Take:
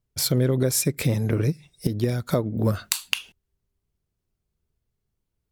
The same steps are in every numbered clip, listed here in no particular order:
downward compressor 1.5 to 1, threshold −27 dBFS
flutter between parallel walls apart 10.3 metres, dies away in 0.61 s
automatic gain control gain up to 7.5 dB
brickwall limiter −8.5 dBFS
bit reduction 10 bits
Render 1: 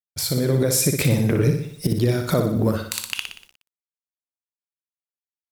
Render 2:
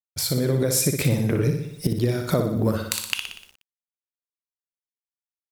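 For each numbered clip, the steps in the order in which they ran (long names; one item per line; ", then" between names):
downward compressor, then flutter between parallel walls, then bit reduction, then automatic gain control, then brickwall limiter
brickwall limiter, then flutter between parallel walls, then bit reduction, then automatic gain control, then downward compressor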